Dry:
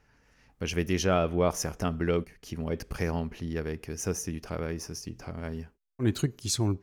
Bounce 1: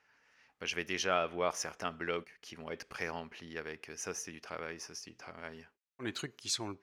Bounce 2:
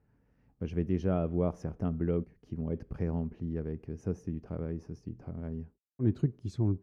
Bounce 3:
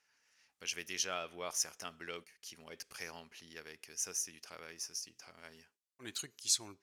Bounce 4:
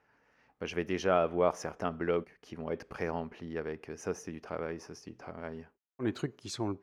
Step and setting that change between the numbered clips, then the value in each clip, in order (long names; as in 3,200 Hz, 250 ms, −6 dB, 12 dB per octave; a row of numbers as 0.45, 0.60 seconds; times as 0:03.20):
resonant band-pass, frequency: 2,200, 150, 7,000, 840 Hertz